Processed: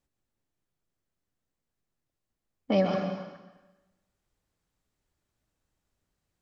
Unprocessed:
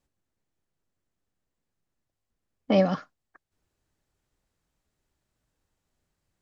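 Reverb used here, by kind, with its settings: plate-style reverb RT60 1.1 s, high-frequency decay 1×, pre-delay 0.11 s, DRR 4 dB; gain -3.5 dB

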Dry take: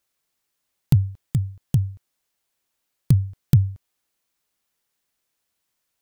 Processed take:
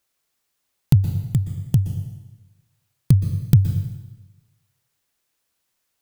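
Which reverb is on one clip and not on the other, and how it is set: plate-style reverb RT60 1.1 s, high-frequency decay 0.95×, pre-delay 0.11 s, DRR 7.5 dB; gain +2 dB

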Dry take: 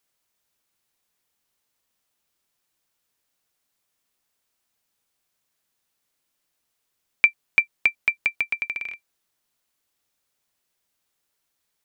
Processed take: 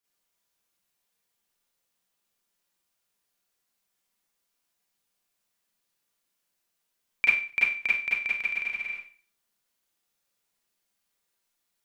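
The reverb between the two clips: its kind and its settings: Schroeder reverb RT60 0.41 s, combs from 32 ms, DRR -8 dB; gain -11 dB

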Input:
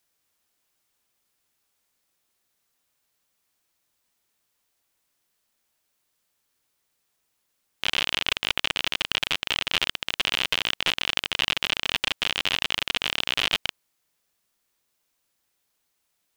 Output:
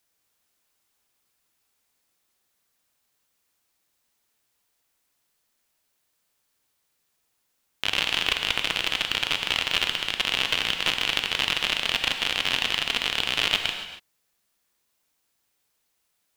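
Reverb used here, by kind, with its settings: non-linear reverb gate 0.31 s flat, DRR 5 dB

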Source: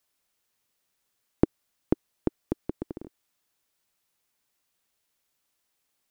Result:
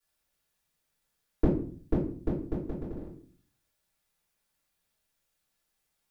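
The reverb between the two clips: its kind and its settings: shoebox room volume 38 m³, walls mixed, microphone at 3 m; gain -15 dB

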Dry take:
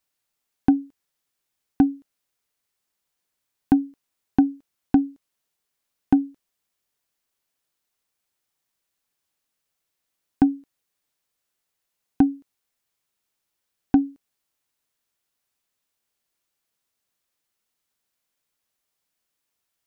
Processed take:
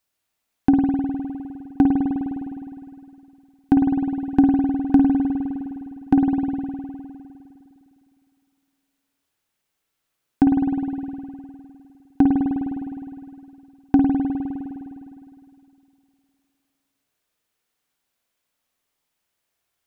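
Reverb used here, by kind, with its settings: spring tank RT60 2.6 s, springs 51 ms, chirp 55 ms, DRR -1 dB; gain +1 dB

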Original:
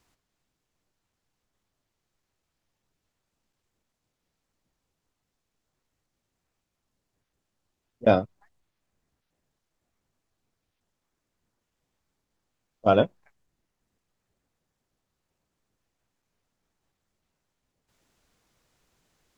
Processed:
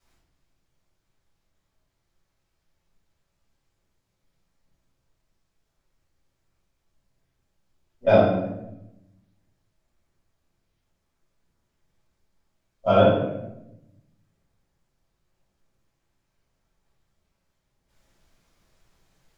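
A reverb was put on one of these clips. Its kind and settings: shoebox room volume 280 m³, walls mixed, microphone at 6.5 m; gain -11.5 dB

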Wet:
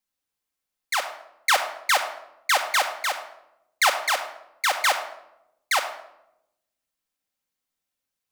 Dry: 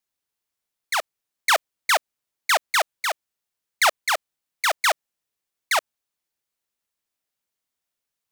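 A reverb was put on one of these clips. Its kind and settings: shoebox room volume 2600 m³, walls furnished, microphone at 2.1 m; gain -2 dB

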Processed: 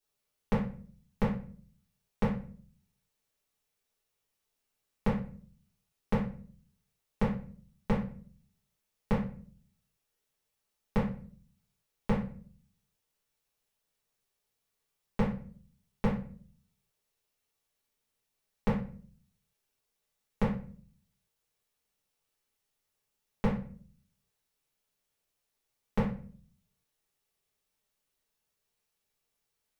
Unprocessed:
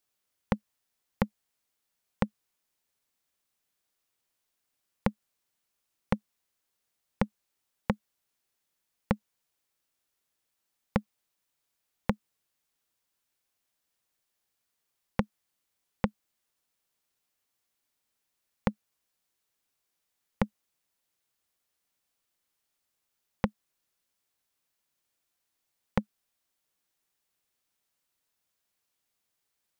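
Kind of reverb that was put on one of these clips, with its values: shoebox room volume 42 m³, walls mixed, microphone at 1.6 m; gain -10 dB

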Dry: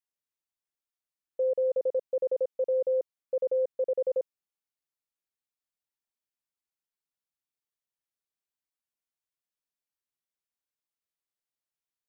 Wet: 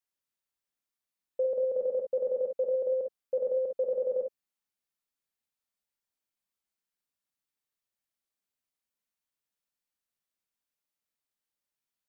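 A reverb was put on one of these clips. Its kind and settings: non-linear reverb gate 80 ms rising, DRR 2.5 dB

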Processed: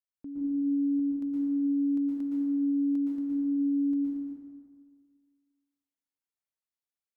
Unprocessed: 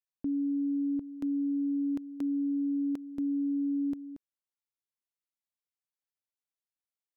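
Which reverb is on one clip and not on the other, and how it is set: plate-style reverb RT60 1.8 s, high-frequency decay 0.55×, pre-delay 0.105 s, DRR -5.5 dB; gain -9 dB

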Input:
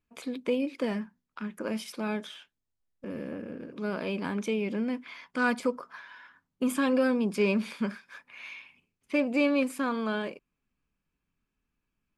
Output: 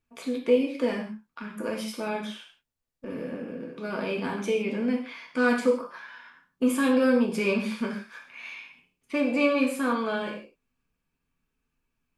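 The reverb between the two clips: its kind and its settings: non-linear reverb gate 0.19 s falling, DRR -0.5 dB

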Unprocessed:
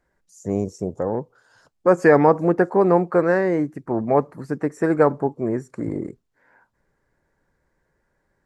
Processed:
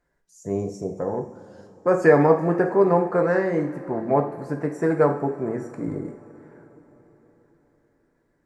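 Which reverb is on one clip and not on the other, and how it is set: two-slope reverb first 0.48 s, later 4.6 s, from -19 dB, DRR 3 dB; gain -4 dB

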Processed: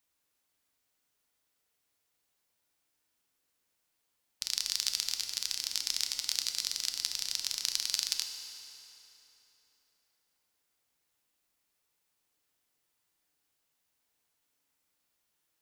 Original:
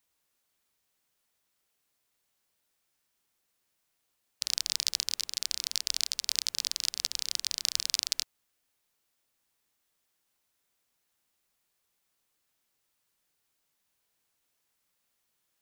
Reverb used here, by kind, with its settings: FDN reverb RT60 3.6 s, high-frequency decay 0.75×, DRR 5 dB; gain -2.5 dB

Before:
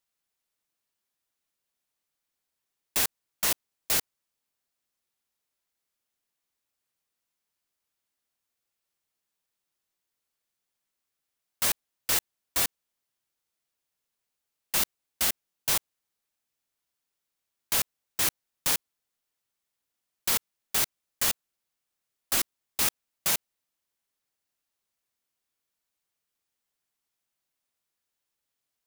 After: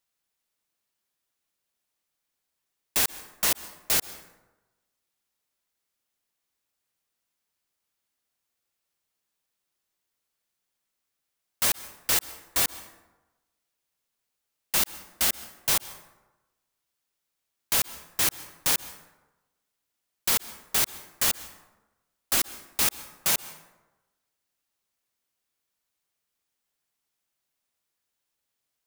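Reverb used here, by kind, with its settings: plate-style reverb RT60 1.1 s, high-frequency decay 0.5×, pre-delay 0.115 s, DRR 16 dB; gain +2 dB

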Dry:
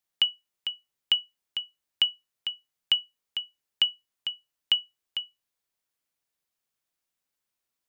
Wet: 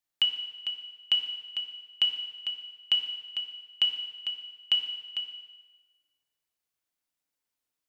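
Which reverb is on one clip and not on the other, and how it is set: FDN reverb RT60 1.3 s, low-frequency decay 0.75×, high-frequency decay 0.95×, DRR 4 dB; gain -3.5 dB

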